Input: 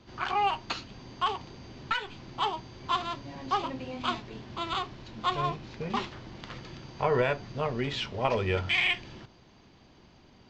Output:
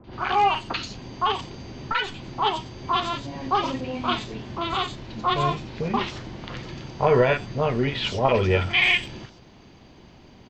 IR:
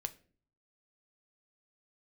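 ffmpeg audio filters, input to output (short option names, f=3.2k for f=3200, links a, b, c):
-filter_complex "[0:a]acrossover=split=1300|4700[a][b][c];[b]adelay=40[d];[c]adelay=130[e];[a][d][e]amix=inputs=3:normalize=0,volume=8dB"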